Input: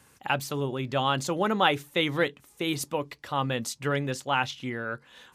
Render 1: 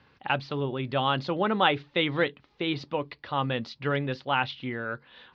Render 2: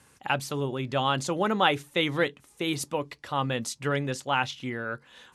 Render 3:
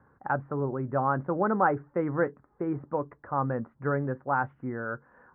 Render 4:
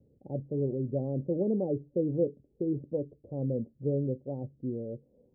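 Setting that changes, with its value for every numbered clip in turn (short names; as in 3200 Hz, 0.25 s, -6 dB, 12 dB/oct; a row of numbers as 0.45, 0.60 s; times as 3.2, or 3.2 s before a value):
steep low-pass, frequency: 4600, 12000, 1600, 560 Hz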